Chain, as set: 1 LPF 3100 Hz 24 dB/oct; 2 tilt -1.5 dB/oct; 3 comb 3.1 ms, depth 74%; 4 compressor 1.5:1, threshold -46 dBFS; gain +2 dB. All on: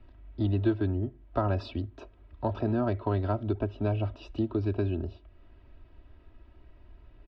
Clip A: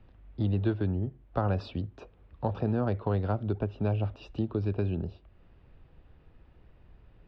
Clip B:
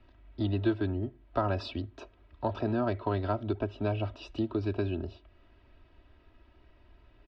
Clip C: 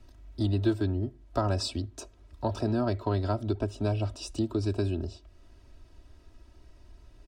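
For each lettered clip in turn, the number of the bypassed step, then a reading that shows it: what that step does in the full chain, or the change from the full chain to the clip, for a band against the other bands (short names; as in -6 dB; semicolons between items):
3, 125 Hz band +2.0 dB; 2, 4 kHz band +4.5 dB; 1, 4 kHz band +9.5 dB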